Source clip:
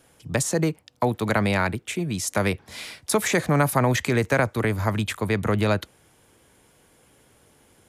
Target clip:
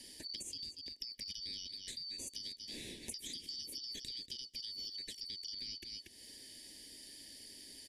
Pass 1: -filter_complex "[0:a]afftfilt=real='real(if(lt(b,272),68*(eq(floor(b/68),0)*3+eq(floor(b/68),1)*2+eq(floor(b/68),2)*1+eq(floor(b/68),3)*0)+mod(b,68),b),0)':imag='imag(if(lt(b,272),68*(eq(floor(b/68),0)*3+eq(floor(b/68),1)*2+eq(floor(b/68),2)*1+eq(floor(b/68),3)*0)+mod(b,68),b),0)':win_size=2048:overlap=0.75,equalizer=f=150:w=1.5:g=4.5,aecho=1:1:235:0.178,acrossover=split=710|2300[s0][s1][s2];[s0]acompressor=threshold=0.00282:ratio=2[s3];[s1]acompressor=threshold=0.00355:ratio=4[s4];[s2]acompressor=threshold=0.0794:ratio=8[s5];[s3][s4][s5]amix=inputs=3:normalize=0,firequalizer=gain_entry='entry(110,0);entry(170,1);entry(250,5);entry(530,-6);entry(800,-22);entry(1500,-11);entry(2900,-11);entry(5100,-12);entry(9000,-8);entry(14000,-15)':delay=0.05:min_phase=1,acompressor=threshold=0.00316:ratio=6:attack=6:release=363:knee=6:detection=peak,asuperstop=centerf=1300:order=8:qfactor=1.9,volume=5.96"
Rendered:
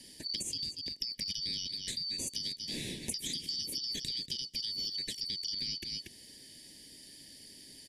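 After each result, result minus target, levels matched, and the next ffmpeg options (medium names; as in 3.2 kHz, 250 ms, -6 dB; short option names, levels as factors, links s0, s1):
compression: peak gain reduction -8 dB; 125 Hz band +3.5 dB
-filter_complex "[0:a]afftfilt=real='real(if(lt(b,272),68*(eq(floor(b/68),0)*3+eq(floor(b/68),1)*2+eq(floor(b/68),2)*1+eq(floor(b/68),3)*0)+mod(b,68),b),0)':imag='imag(if(lt(b,272),68*(eq(floor(b/68),0)*3+eq(floor(b/68),1)*2+eq(floor(b/68),2)*1+eq(floor(b/68),3)*0)+mod(b,68),b),0)':win_size=2048:overlap=0.75,equalizer=f=150:w=1.5:g=4.5,aecho=1:1:235:0.178,acrossover=split=710|2300[s0][s1][s2];[s0]acompressor=threshold=0.00282:ratio=2[s3];[s1]acompressor=threshold=0.00355:ratio=4[s4];[s2]acompressor=threshold=0.0794:ratio=8[s5];[s3][s4][s5]amix=inputs=3:normalize=0,firequalizer=gain_entry='entry(110,0);entry(170,1);entry(250,5);entry(530,-6);entry(800,-22);entry(1500,-11);entry(2900,-11);entry(5100,-12);entry(9000,-8);entry(14000,-15)':delay=0.05:min_phase=1,acompressor=threshold=0.00106:ratio=6:attack=6:release=363:knee=6:detection=peak,asuperstop=centerf=1300:order=8:qfactor=1.9,volume=5.96"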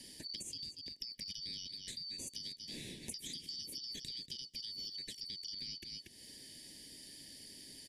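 125 Hz band +4.5 dB
-filter_complex "[0:a]afftfilt=real='real(if(lt(b,272),68*(eq(floor(b/68),0)*3+eq(floor(b/68),1)*2+eq(floor(b/68),2)*1+eq(floor(b/68),3)*0)+mod(b,68),b),0)':imag='imag(if(lt(b,272),68*(eq(floor(b/68),0)*3+eq(floor(b/68),1)*2+eq(floor(b/68),2)*1+eq(floor(b/68),3)*0)+mod(b,68),b),0)':win_size=2048:overlap=0.75,equalizer=f=150:w=1.5:g=-5,aecho=1:1:235:0.178,acrossover=split=710|2300[s0][s1][s2];[s0]acompressor=threshold=0.00282:ratio=2[s3];[s1]acompressor=threshold=0.00355:ratio=4[s4];[s2]acompressor=threshold=0.0794:ratio=8[s5];[s3][s4][s5]amix=inputs=3:normalize=0,firequalizer=gain_entry='entry(110,0);entry(170,1);entry(250,5);entry(530,-6);entry(800,-22);entry(1500,-11);entry(2900,-11);entry(5100,-12);entry(9000,-8);entry(14000,-15)':delay=0.05:min_phase=1,acompressor=threshold=0.00106:ratio=6:attack=6:release=363:knee=6:detection=peak,asuperstop=centerf=1300:order=8:qfactor=1.9,volume=5.96"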